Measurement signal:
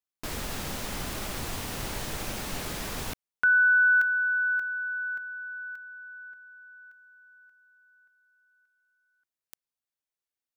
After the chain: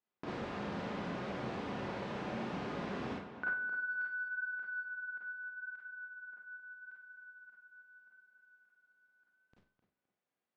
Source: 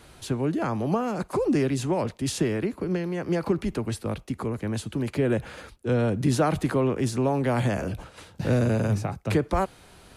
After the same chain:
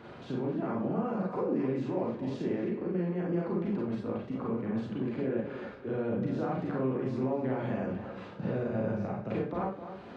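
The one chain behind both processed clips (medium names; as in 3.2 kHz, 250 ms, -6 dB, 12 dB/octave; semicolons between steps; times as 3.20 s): high-pass 150 Hz 12 dB/octave; treble shelf 3.9 kHz +4 dB; in parallel at +2 dB: peak limiter -20 dBFS; on the sum: compression 2:1, threshold -46 dBFS; wavefolder -20.5 dBFS; tape spacing loss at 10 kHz 45 dB; tape echo 260 ms, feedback 32%, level -9 dB, low-pass 2.6 kHz; Schroeder reverb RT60 0.39 s, combs from 31 ms, DRR -4 dB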